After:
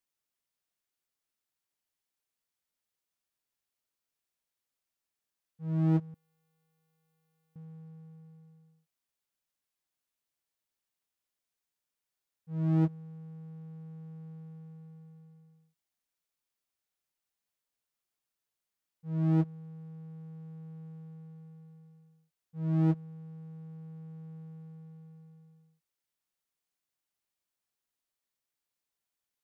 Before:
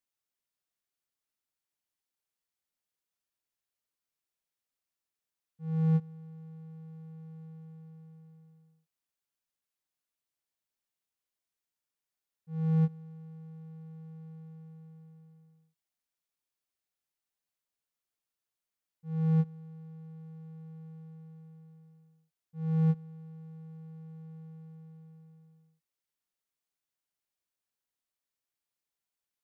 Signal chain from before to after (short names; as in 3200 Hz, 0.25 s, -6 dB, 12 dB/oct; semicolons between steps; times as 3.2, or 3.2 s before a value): 6.14–7.56 differentiator; Doppler distortion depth 0.88 ms; gain +1 dB